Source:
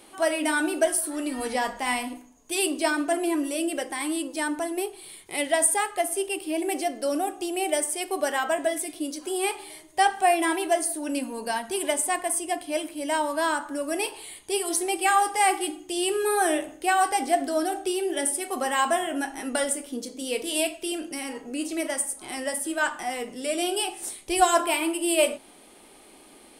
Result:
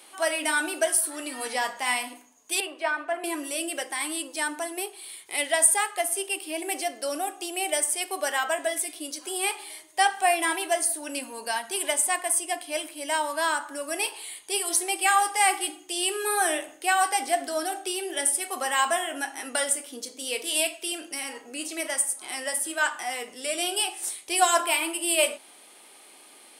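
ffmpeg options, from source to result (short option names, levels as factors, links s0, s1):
-filter_complex "[0:a]asettb=1/sr,asplit=3[s0][s1][s2];[s0]atrim=end=2.604[s3];[s1]atrim=start=2.6:end=3.24,asetpts=PTS-STARTPTS,afade=t=in:d=0.004:c=qsin,afade=t=out:st=0.636:d=0.004:c=qsin,acrossover=split=360 2700:gain=0.0794 1 0.0794[s4][s5][s6];[s4][s5][s6]amix=inputs=3:normalize=0[s7];[s2]atrim=start=3.236[s8];[s3][s7]acrossfade=d=0.004:c1=hsin:c2=qsin[s9];[s9][s8]acrossfade=d=0.004:c1=qsin:c2=hsin,highpass=f=1100:p=1,volume=1.41"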